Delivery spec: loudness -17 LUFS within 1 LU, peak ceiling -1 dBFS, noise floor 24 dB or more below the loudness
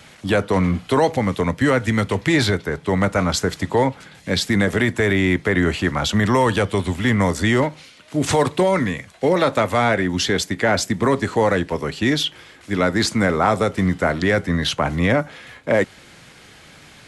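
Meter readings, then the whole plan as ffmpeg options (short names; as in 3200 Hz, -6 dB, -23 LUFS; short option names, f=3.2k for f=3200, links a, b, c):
loudness -19.5 LUFS; peak -5.0 dBFS; loudness target -17.0 LUFS
-> -af "volume=2.5dB"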